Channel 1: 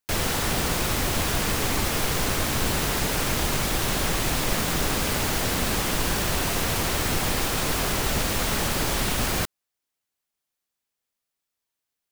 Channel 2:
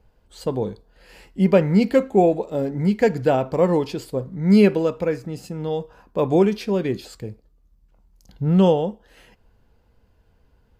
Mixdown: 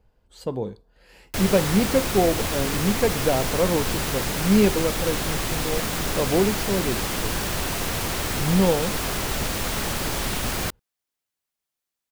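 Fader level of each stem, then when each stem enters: −1.5, −4.0 decibels; 1.25, 0.00 seconds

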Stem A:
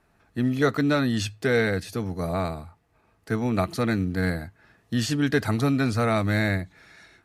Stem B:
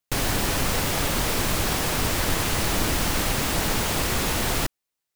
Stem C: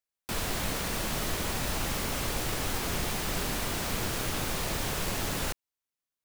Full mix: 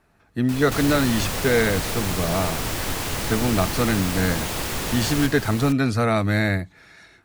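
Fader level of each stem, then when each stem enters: +2.5, −3.5, −2.5 decibels; 0.00, 0.60, 0.20 seconds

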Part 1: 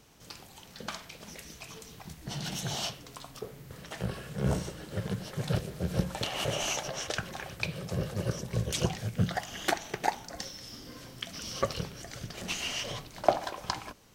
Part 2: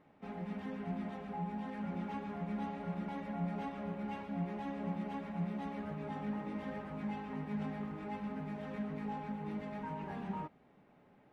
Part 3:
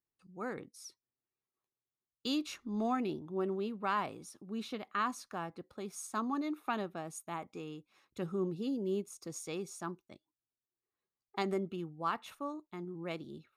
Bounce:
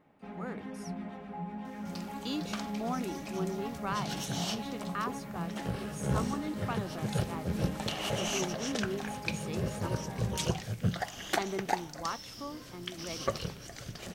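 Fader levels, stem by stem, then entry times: −2.0, 0.0, −2.0 decibels; 1.65, 0.00, 0.00 seconds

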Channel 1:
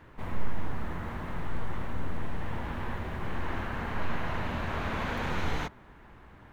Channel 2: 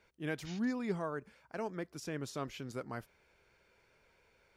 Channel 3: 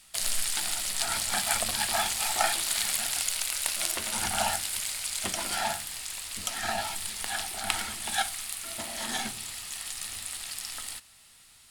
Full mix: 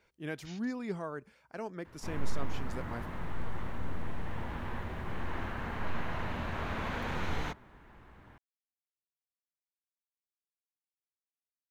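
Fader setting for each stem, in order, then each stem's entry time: −3.5 dB, −1.0 dB, muted; 1.85 s, 0.00 s, muted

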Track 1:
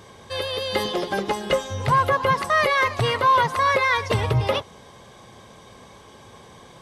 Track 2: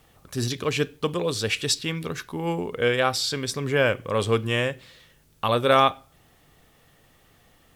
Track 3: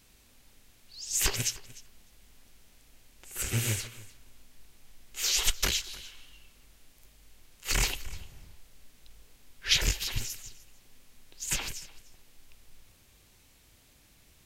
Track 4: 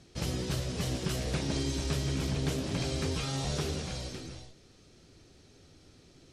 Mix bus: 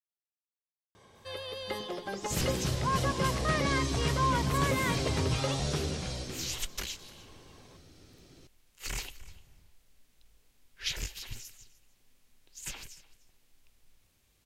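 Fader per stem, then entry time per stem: −12.5 dB, muted, −9.5 dB, +1.0 dB; 0.95 s, muted, 1.15 s, 2.15 s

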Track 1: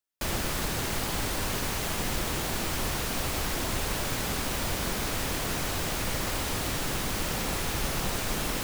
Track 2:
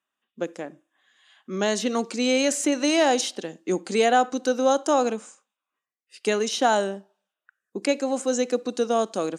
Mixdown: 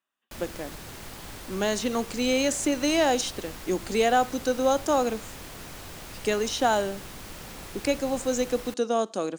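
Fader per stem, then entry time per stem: −11.0, −2.5 decibels; 0.10, 0.00 seconds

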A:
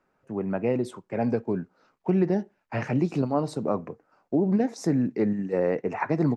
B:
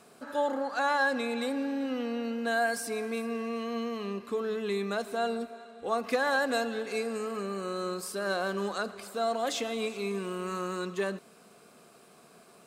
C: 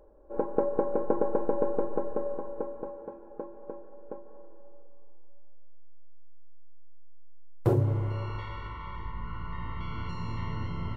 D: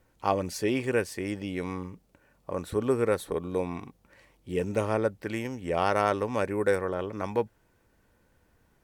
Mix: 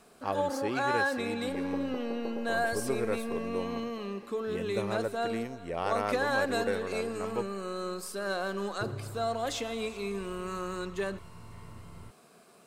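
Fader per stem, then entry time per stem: muted, −2.0 dB, −14.0 dB, −7.0 dB; muted, 0.00 s, 1.15 s, 0.00 s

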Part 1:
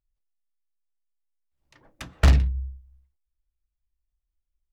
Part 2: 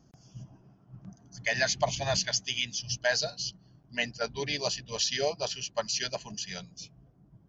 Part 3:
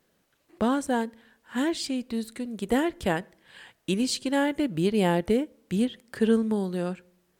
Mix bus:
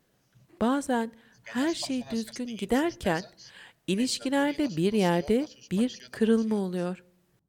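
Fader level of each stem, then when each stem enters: muted, −15.5 dB, −1.0 dB; muted, 0.00 s, 0.00 s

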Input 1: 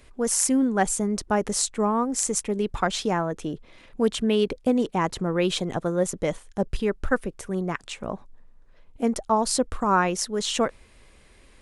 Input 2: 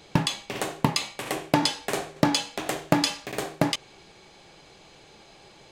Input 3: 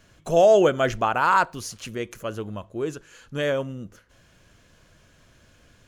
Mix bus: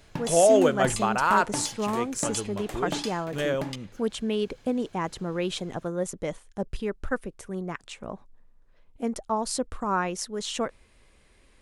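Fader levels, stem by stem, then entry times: −5.5, −11.5, −3.0 decibels; 0.00, 0.00, 0.00 seconds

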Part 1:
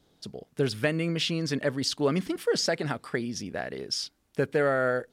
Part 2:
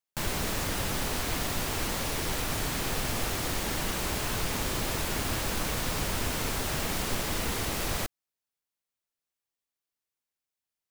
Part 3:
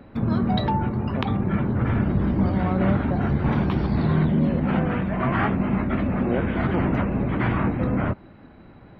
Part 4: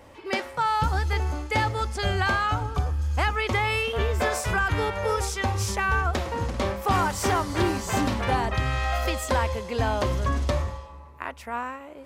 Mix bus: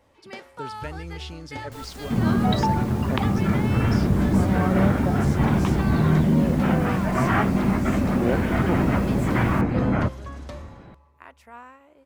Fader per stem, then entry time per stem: −11.0, −14.0, +1.5, −12.0 decibels; 0.00, 1.55, 1.95, 0.00 seconds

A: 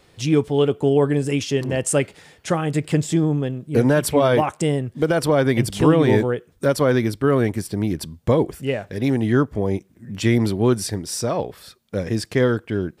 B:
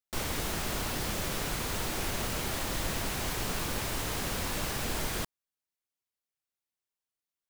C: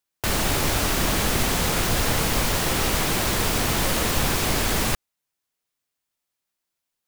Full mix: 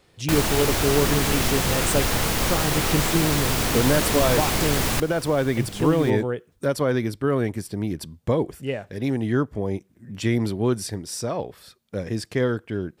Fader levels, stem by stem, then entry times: −4.5, −7.5, −0.5 decibels; 0.00, 0.85, 0.05 seconds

